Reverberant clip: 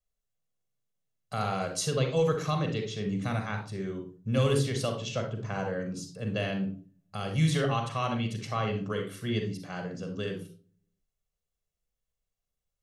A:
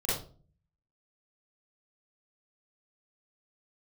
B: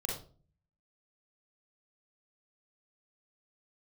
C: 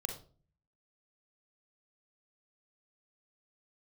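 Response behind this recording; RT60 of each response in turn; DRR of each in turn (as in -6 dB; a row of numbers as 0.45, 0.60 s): C; 0.40, 0.40, 0.40 s; -10.0, -2.0, 4.0 dB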